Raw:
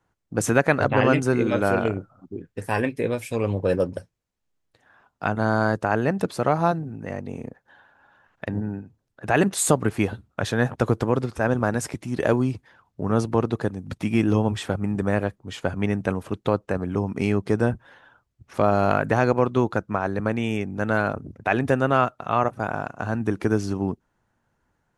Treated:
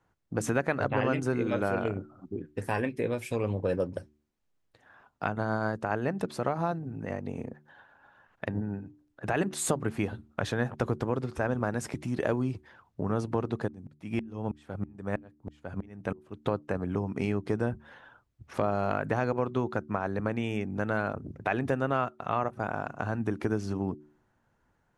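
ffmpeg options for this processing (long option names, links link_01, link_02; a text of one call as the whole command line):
ffmpeg -i in.wav -filter_complex "[0:a]asettb=1/sr,asplit=3[link_01][link_02][link_03];[link_01]atrim=end=5.274[link_04];[link_02]atrim=start=5.27:end=9.67,asetpts=PTS-STARTPTS,afade=type=in:duration=0.004:curve=qsin,afade=type=out:start_time=4.396:duration=0.004:curve=qsin,tremolo=f=7.5:d=0.29[link_05];[link_03]atrim=start=9.666[link_06];[link_04][link_05]acrossfade=duration=0.004:curve1=hsin:curve2=qsin[link_07];[link_07][link_06]acrossfade=duration=0.004:curve1=qsin:curve2=hsin,asplit=3[link_08][link_09][link_10];[link_08]afade=type=out:start_time=13.67:duration=0.02[link_11];[link_09]aeval=exprs='val(0)*pow(10,-36*if(lt(mod(-3.1*n/s,1),2*abs(-3.1)/1000),1-mod(-3.1*n/s,1)/(2*abs(-3.1)/1000),(mod(-3.1*n/s,1)-2*abs(-3.1)/1000)/(1-2*abs(-3.1)/1000))/20)':channel_layout=same,afade=type=in:start_time=13.67:duration=0.02,afade=type=out:start_time=16.45:duration=0.02[link_12];[link_10]afade=type=in:start_time=16.45:duration=0.02[link_13];[link_11][link_12][link_13]amix=inputs=3:normalize=0,highshelf=frequency=4600:gain=-5,acompressor=threshold=-30dB:ratio=2,bandreject=frequency=74.48:width_type=h:width=4,bandreject=frequency=148.96:width_type=h:width=4,bandreject=frequency=223.44:width_type=h:width=4,bandreject=frequency=297.92:width_type=h:width=4,bandreject=frequency=372.4:width_type=h:width=4" out.wav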